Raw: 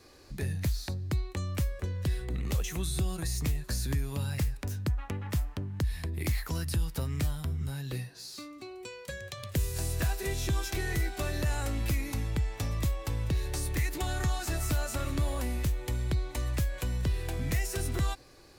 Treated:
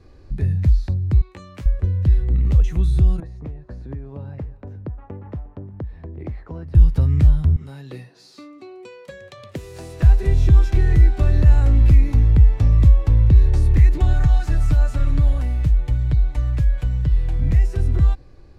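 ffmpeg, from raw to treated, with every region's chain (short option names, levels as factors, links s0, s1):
-filter_complex "[0:a]asettb=1/sr,asplit=3[s0][s1][s2];[s0]atrim=end=1.214[s3];[s1]atrim=start=1.21:end=1.66,asetpts=PTS-STARTPTS,afade=t=in:d=0.004:c=qsin,afade=t=out:st=0.446:d=0.004:c=qsin,highpass=f=850:p=1,asplit=2[s4][s5];[s5]adelay=17,volume=0.631[s6];[s4][s6]amix=inputs=2:normalize=0,atrim=end_sample=19845[s7];[s2]atrim=start=1.656[s8];[s3][s7]acrossfade=d=0.004:c1=hsin:c2=qsin[s9];[s9][s8]acrossfade=d=0.004:c1=qsin:c2=hsin,asettb=1/sr,asplit=3[s10][s11][s12];[s10]atrim=end=3.204[s13];[s11]atrim=start=3.2:end=6.75,asetpts=PTS-STARTPTS,afade=t=in:d=0.004:c=qsin,afade=t=out:st=3.546:d=0.004:c=qsin,bandpass=f=570:t=q:w=1.1,aecho=1:1:354:0.0891,atrim=end_sample=156555[s14];[s12]atrim=start=6.746[s15];[s13][s14]acrossfade=d=0.004:c1=hsin:c2=qsin[s16];[s16][s15]acrossfade=d=0.004:c1=qsin:c2=hsin,asettb=1/sr,asplit=3[s17][s18][s19];[s17]atrim=end=7.564[s20];[s18]atrim=start=7.56:end=10.03,asetpts=PTS-STARTPTS,afade=t=in:d=0.004:c=qsin,afade=t=out:st=2.466:d=0.004:c=qsin,highpass=320,bandreject=f=1600:w=14[s21];[s19]atrim=start=10.026[s22];[s20][s21]acrossfade=d=0.004:c1=hsin:c2=qsin[s23];[s23][s22]acrossfade=d=0.004:c1=qsin:c2=hsin,asettb=1/sr,asplit=3[s24][s25][s26];[s24]atrim=end=14.134[s27];[s25]atrim=start=14.13:end=17.42,asetpts=PTS-STARTPTS,afade=t=in:d=0.004:c=qsin,afade=t=out:st=3.286:d=0.004:c=qsin,equalizer=f=290:t=o:w=2.9:g=-5.5,aecho=1:1:6.7:0.54,atrim=end_sample=145089[s28];[s26]atrim=start=17.416[s29];[s27][s28]acrossfade=d=0.004:c1=hsin:c2=qsin[s30];[s30][s29]acrossfade=d=0.004:c1=qsin:c2=hsin,aemphasis=mode=reproduction:type=riaa,dynaudnorm=f=890:g=9:m=1.78"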